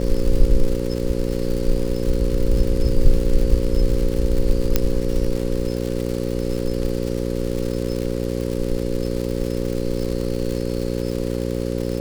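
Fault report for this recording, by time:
buzz 60 Hz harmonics 9 -24 dBFS
crackle 190/s -25 dBFS
4.76 pop -2 dBFS

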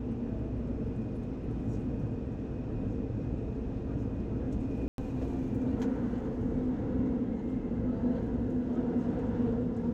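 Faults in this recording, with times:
4.88–4.98 gap 0.102 s

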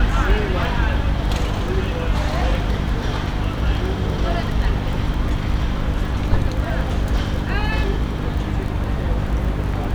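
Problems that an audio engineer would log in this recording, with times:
crackle 17/s -26 dBFS
hum 50 Hz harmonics 6 -25 dBFS
5.14 gap 2.9 ms

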